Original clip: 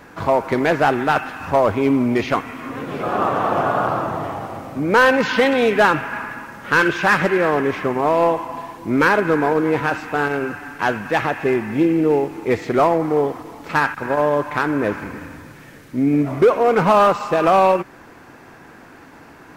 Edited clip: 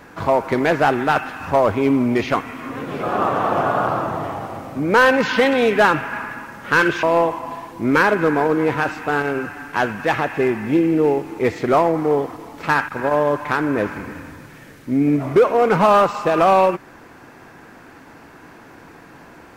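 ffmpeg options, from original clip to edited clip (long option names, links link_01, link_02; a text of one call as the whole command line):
ffmpeg -i in.wav -filter_complex "[0:a]asplit=2[link_01][link_02];[link_01]atrim=end=7.032[link_03];[link_02]atrim=start=8.088[link_04];[link_03][link_04]acrossfade=duration=0.004:curve1=hsin:curve2=hsin" out.wav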